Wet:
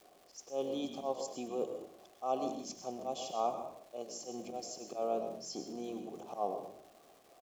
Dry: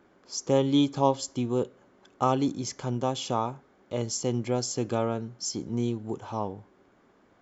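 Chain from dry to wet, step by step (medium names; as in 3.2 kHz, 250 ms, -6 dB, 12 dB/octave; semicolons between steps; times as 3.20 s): gate with hold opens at -53 dBFS; FFT filter 190 Hz 0 dB, 430 Hz +4 dB, 1.9 kHz -10 dB, 5.7 kHz +15 dB; reverse; compression 6:1, threshold -28 dBFS, peak gain reduction 14 dB; reverse; vowel filter a; slow attack 106 ms; resonant low shelf 130 Hz -7 dB, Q 3; crackle 470 per s -63 dBFS; frequency-shifting echo 98 ms, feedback 32%, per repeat -45 Hz, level -12 dB; on a send at -8.5 dB: reverberation RT60 0.50 s, pre-delay 109 ms; on the sum: trim +10.5 dB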